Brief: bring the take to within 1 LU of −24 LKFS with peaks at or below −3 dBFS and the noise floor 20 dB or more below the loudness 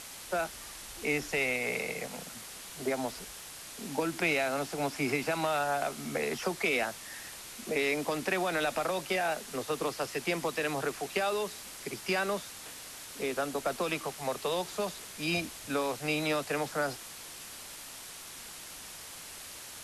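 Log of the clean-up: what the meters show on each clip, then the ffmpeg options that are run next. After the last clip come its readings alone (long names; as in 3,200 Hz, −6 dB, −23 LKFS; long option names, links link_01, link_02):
background noise floor −46 dBFS; target noise floor −54 dBFS; integrated loudness −33.5 LKFS; sample peak −14.0 dBFS; target loudness −24.0 LKFS
→ -af "afftdn=noise_reduction=8:noise_floor=-46"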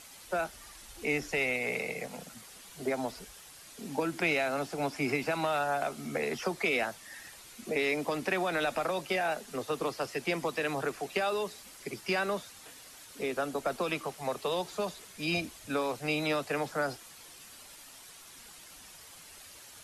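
background noise floor −52 dBFS; target noise floor −53 dBFS
→ -af "afftdn=noise_reduction=6:noise_floor=-52"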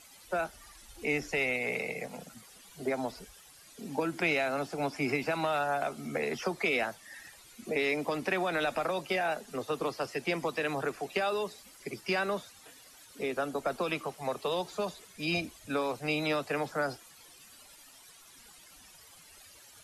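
background noise floor −56 dBFS; integrated loudness −32.5 LKFS; sample peak −14.0 dBFS; target loudness −24.0 LKFS
→ -af "volume=8.5dB"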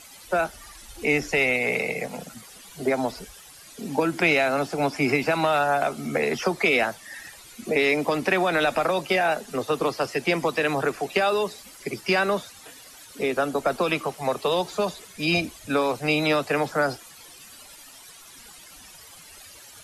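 integrated loudness −24.0 LKFS; sample peak −5.5 dBFS; background noise floor −47 dBFS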